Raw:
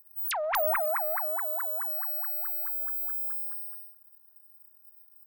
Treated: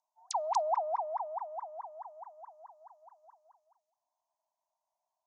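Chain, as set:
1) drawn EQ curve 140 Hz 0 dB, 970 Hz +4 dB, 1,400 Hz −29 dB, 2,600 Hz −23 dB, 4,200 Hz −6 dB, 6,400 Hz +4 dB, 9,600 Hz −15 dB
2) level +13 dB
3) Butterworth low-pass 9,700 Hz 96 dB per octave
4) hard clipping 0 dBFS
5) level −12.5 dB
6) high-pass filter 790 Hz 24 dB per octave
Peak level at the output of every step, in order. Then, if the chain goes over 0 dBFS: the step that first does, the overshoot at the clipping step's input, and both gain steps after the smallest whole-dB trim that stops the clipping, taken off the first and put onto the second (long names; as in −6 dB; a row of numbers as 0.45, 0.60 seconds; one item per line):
−18.5, −5.5, −6.0, −6.0, −18.5, −20.0 dBFS
no step passes full scale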